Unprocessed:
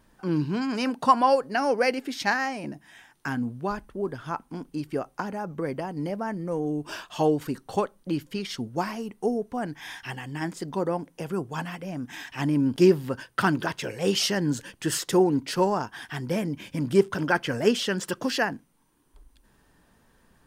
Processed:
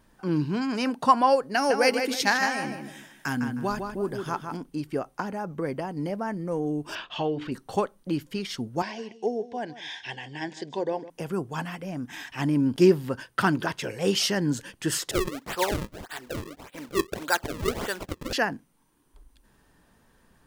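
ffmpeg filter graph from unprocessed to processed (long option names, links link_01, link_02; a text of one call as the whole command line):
ffmpeg -i in.wav -filter_complex "[0:a]asettb=1/sr,asplit=3[link_01][link_02][link_03];[link_01]atrim=end=1.544[link_04];[link_02]atrim=start=1.54:end=4.57,asetpts=PTS-STARTPTS,afade=type=in:duration=0.004:curve=qsin,afade=type=out:start_time=3.026:duration=0.004:curve=qsin,highshelf=frequency=4200:gain=10.5,asplit=2[link_05][link_06];[link_06]adelay=156,lowpass=frequency=3600:poles=1,volume=-5.5dB,asplit=2[link_07][link_08];[link_08]adelay=156,lowpass=frequency=3600:poles=1,volume=0.31,asplit=2[link_09][link_10];[link_10]adelay=156,lowpass=frequency=3600:poles=1,volume=0.31,asplit=2[link_11][link_12];[link_12]adelay=156,lowpass=frequency=3600:poles=1,volume=0.31[link_13];[link_05][link_07][link_09][link_11][link_13]amix=inputs=5:normalize=0,atrim=end_sample=133623[link_14];[link_03]atrim=start=4.566[link_15];[link_04][link_14]acrossfade=duration=0.004:curve1=hsin:curve2=qsin[link_16];[link_16][link_15]acrossfade=duration=0.004:curve1=qsin:curve2=hsin,asettb=1/sr,asplit=3[link_17][link_18][link_19];[link_17]atrim=end=6.954[link_20];[link_18]atrim=start=6.95:end=7.52,asetpts=PTS-STARTPTS,afade=type=in:duration=0.004:curve=qsin,afade=type=out:start_time=0.566:duration=0.004:curve=qsin,bandreject=frequency=60:width_type=h:width=6,bandreject=frequency=120:width_type=h:width=6,bandreject=frequency=180:width_type=h:width=6,bandreject=frequency=240:width_type=h:width=6,bandreject=frequency=300:width_type=h:width=6,bandreject=frequency=360:width_type=h:width=6,bandreject=frequency=420:width_type=h:width=6,bandreject=frequency=480:width_type=h:width=6,bandreject=frequency=540:width_type=h:width=6,acompressor=threshold=-32dB:ratio=1.5:attack=3.2:release=140:knee=1:detection=peak,lowpass=frequency=3200:width_type=q:width=2[link_21];[link_19]atrim=start=7.516[link_22];[link_20][link_21]acrossfade=duration=0.004:curve1=hsin:curve2=qsin[link_23];[link_23][link_22]acrossfade=duration=0.004:curve1=qsin:curve2=hsin,asettb=1/sr,asplit=3[link_24][link_25][link_26];[link_24]atrim=end=8.824[link_27];[link_25]atrim=start=8.82:end=11.1,asetpts=PTS-STARTPTS,afade=type=in:duration=0.004:curve=qsin,afade=type=out:start_time=2.276:duration=0.004:curve=qsin,asuperstop=centerf=1300:order=4:qfactor=3.7,highpass=170,equalizer=frequency=180:width_type=q:width=4:gain=-9,equalizer=frequency=270:width_type=q:width=4:gain=-7,equalizer=frequency=1100:width_type=q:width=4:gain=-6,equalizer=frequency=3500:width_type=q:width=4:gain=7,lowpass=frequency=6500:width=0.5412,lowpass=frequency=6500:width=1.3066,aecho=1:1:156:0.168,atrim=end_sample=100548[link_28];[link_26]atrim=start=11.096[link_29];[link_27][link_28]acrossfade=duration=0.004:curve1=hsin:curve2=qsin[link_30];[link_30][link_29]acrossfade=duration=0.004:curve1=qsin:curve2=hsin,asettb=1/sr,asplit=3[link_31][link_32][link_33];[link_31]atrim=end=15.114[link_34];[link_32]atrim=start=15.11:end=18.33,asetpts=PTS-STARTPTS,afade=type=in:duration=0.004:curve=qsin,afade=type=out:start_time=3.216:duration=0.004:curve=qsin,highpass=530,highshelf=frequency=11000:gain=-10.5,acrusher=samples=34:mix=1:aa=0.000001:lfo=1:lforange=54.4:lforate=1.7[link_35];[link_33]atrim=start=18.326[link_36];[link_34][link_35]acrossfade=duration=0.004:curve1=hsin:curve2=qsin[link_37];[link_37][link_36]acrossfade=duration=0.004:curve1=qsin:curve2=hsin" out.wav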